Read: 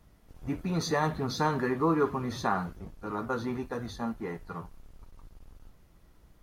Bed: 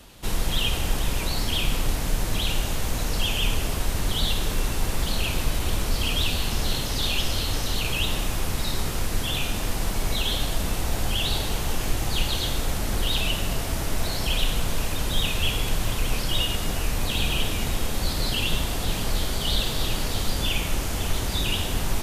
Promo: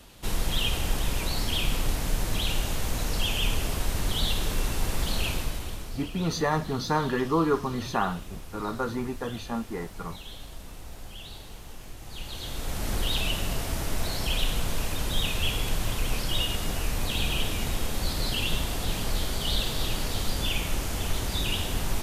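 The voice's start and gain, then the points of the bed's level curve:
5.50 s, +2.0 dB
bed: 5.28 s -2.5 dB
6.10 s -17.5 dB
11.98 s -17.5 dB
12.88 s -3 dB

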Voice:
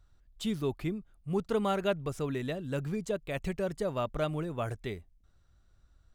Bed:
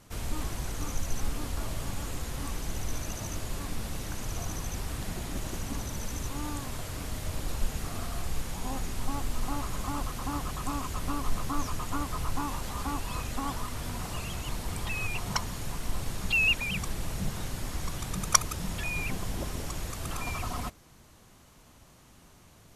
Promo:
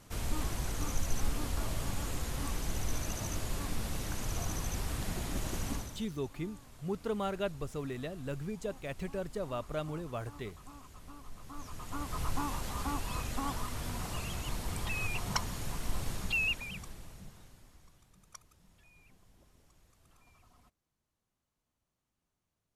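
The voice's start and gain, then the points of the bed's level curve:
5.55 s, -5.0 dB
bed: 5.72 s -1 dB
6.12 s -18.5 dB
11.35 s -18.5 dB
12.22 s -2.5 dB
16.13 s -2.5 dB
18.10 s -30 dB

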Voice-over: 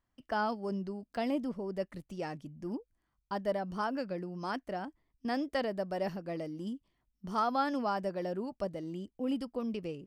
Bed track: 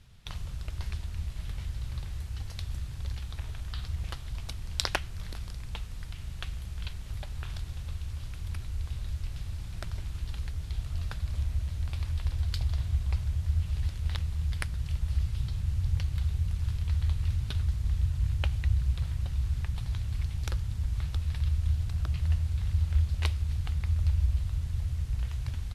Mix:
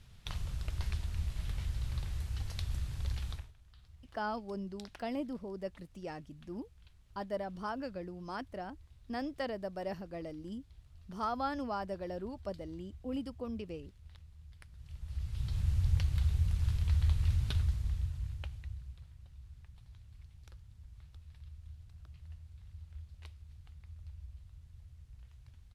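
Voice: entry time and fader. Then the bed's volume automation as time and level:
3.85 s, -4.5 dB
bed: 3.33 s -1 dB
3.54 s -23.5 dB
14.60 s -23.5 dB
15.59 s -1 dB
17.55 s -1 dB
19.10 s -22.5 dB

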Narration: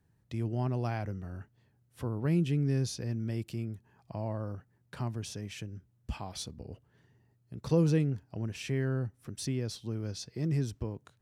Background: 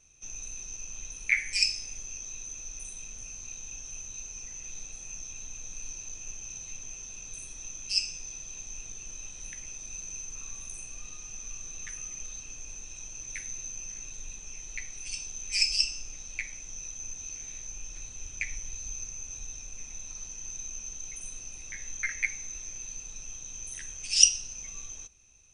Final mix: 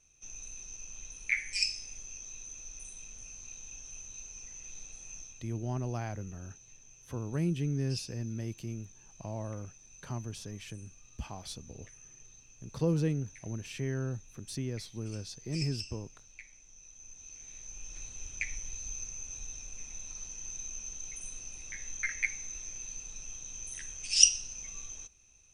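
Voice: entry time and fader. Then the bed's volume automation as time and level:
5.10 s, -3.0 dB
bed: 5.20 s -5 dB
5.49 s -15 dB
16.76 s -15 dB
18.01 s -2 dB

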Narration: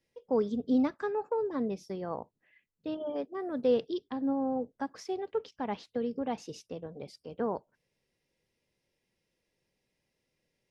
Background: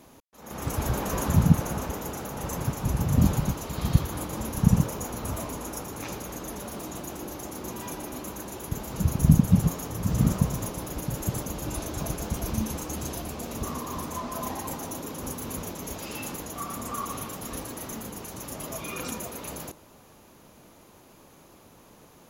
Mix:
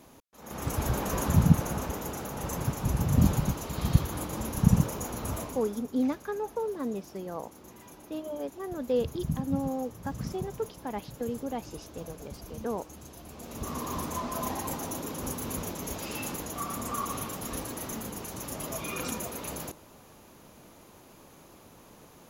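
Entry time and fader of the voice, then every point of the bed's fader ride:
5.25 s, -1.0 dB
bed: 5.36 s -1.5 dB
5.88 s -14 dB
13.13 s -14 dB
13.84 s 0 dB

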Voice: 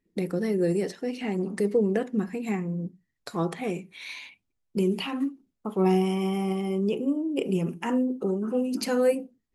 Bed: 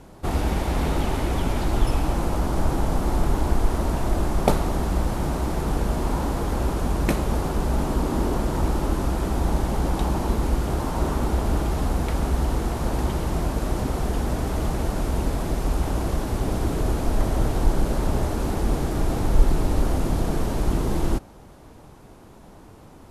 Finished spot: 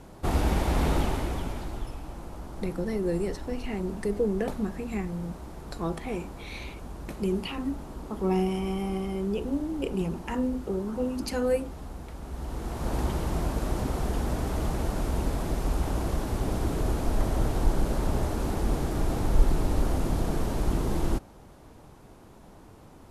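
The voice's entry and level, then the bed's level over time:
2.45 s, -3.5 dB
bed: 0.96 s -1.5 dB
1.96 s -16.5 dB
12.21 s -16.5 dB
12.95 s -4 dB

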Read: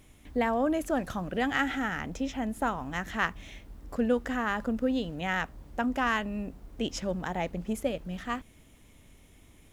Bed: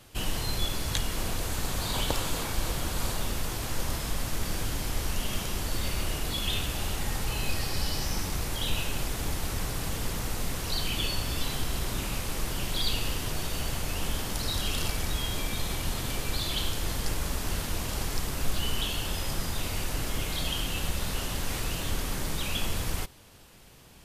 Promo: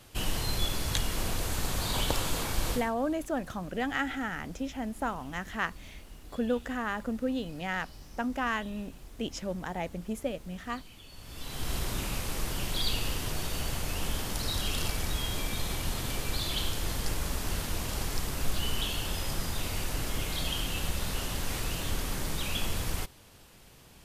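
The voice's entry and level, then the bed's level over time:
2.40 s, -3.0 dB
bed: 2.74 s -0.5 dB
2.95 s -22 dB
11.07 s -22 dB
11.70 s -1.5 dB

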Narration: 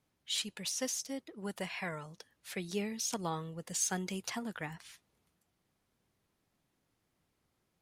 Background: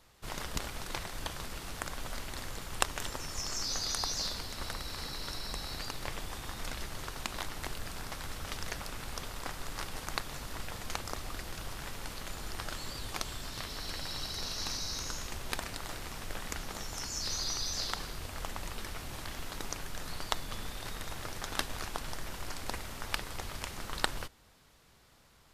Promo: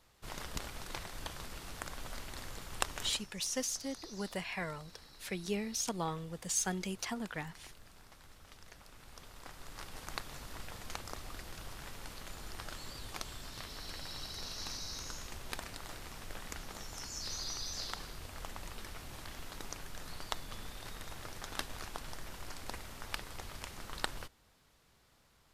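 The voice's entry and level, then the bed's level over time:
2.75 s, 0.0 dB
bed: 3.08 s -4.5 dB
3.30 s -17 dB
8.69 s -17 dB
10.12 s -5.5 dB

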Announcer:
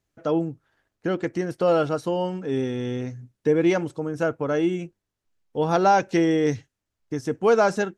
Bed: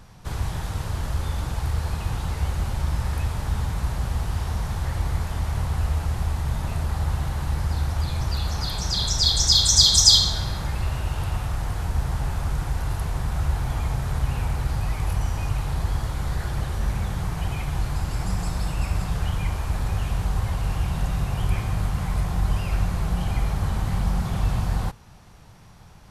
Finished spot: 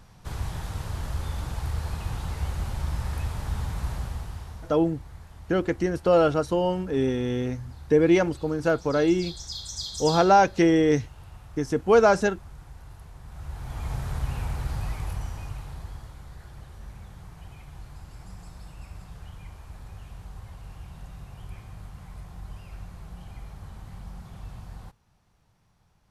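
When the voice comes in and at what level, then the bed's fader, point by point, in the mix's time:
4.45 s, +1.0 dB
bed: 3.94 s -4.5 dB
4.87 s -19 dB
13.20 s -19 dB
13.94 s -5 dB
14.86 s -5 dB
16.28 s -17.5 dB

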